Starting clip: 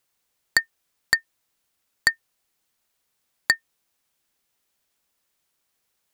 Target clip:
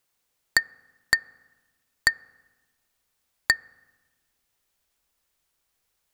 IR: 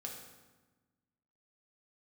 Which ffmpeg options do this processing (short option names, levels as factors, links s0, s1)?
-filter_complex "[0:a]asubboost=boost=3:cutoff=94,asplit=2[s0][s1];[1:a]atrim=start_sample=2205,lowpass=2200[s2];[s1][s2]afir=irnorm=-1:irlink=0,volume=0.188[s3];[s0][s3]amix=inputs=2:normalize=0,volume=0.891"